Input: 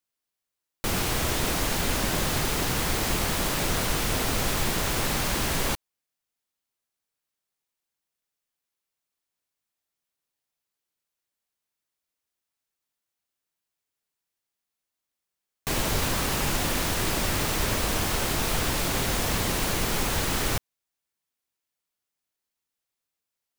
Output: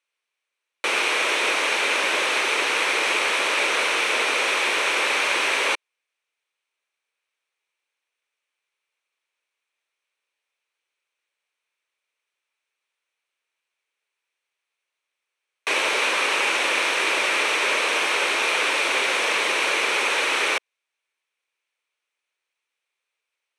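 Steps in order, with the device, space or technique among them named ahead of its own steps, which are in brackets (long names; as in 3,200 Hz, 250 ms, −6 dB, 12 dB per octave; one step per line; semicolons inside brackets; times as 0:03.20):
phone speaker on a table (loudspeaker in its box 430–8,000 Hz, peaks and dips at 720 Hz −7 dB, 2,400 Hz +9 dB, 4,900 Hz −9 dB, 7,100 Hz −10 dB)
level +7.5 dB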